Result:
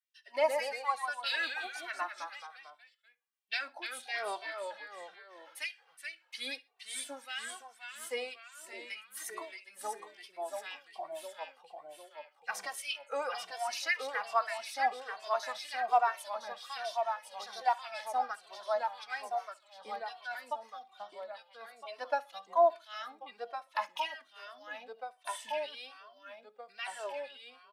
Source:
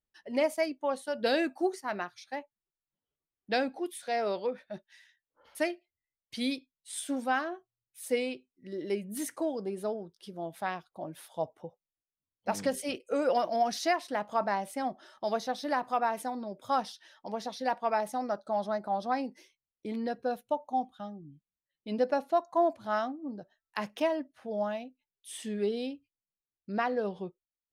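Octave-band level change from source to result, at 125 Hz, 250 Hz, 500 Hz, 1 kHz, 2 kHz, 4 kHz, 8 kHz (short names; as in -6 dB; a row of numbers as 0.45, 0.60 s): under -30 dB, -23.5 dB, -6.0 dB, -2.0 dB, +1.0 dB, +1.5 dB, -1.5 dB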